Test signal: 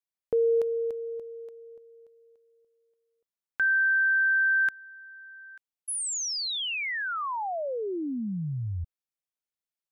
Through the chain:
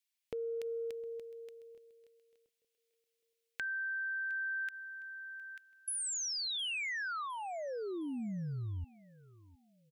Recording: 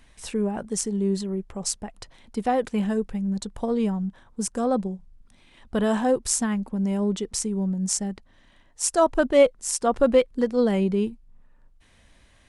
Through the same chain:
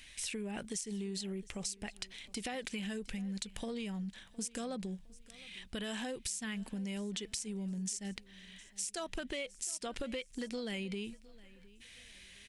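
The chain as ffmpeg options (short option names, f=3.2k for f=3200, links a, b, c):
-filter_complex "[0:a]highshelf=f=1.6k:t=q:w=1.5:g=13.5,acompressor=threshold=-29dB:ratio=16:attack=6.7:release=71:knee=1:detection=rms,asplit=2[a][b];[b]aecho=0:1:711|1422|2133:0.0841|0.0294|0.0103[c];[a][c]amix=inputs=2:normalize=0,volume=-7dB"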